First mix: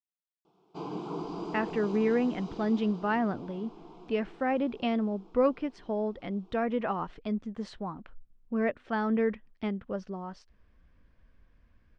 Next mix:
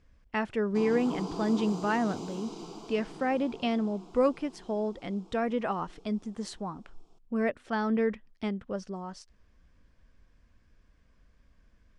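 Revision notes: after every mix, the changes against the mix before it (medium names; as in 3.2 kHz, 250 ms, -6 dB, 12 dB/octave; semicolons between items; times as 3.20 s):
speech: entry -1.20 s; master: remove low-pass 3.4 kHz 12 dB/octave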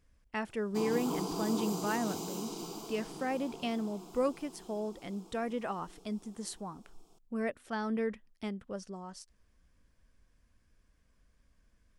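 speech -6.0 dB; master: remove distance through air 98 m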